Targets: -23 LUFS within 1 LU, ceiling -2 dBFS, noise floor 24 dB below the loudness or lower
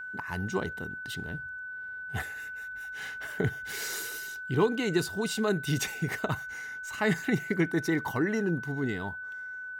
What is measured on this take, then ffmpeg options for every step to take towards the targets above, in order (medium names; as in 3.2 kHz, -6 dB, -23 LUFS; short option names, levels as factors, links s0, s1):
steady tone 1.5 kHz; tone level -37 dBFS; loudness -31.5 LUFS; peak level -13.5 dBFS; loudness target -23.0 LUFS
-> -af "bandreject=f=1500:w=30"
-af "volume=2.66"